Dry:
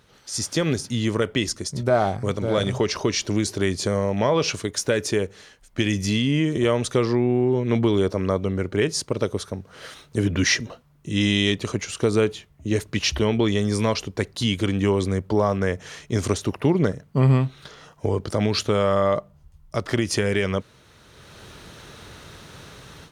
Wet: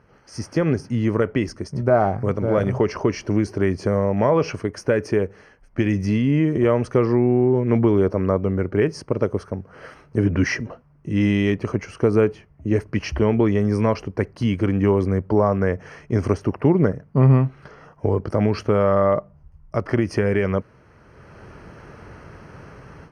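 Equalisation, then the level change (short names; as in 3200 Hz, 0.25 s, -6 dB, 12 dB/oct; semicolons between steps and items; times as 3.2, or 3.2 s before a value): running mean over 12 samples; +3.0 dB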